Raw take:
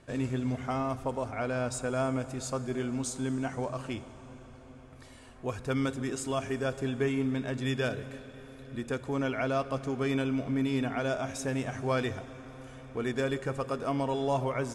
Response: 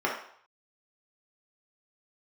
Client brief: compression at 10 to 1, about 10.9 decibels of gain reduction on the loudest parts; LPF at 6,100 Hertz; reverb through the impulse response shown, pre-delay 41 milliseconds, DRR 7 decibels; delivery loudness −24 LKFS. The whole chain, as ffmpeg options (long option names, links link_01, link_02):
-filter_complex "[0:a]lowpass=6100,acompressor=threshold=-36dB:ratio=10,asplit=2[link_01][link_02];[1:a]atrim=start_sample=2205,adelay=41[link_03];[link_02][link_03]afir=irnorm=-1:irlink=0,volume=-19dB[link_04];[link_01][link_04]amix=inputs=2:normalize=0,volume=16.5dB"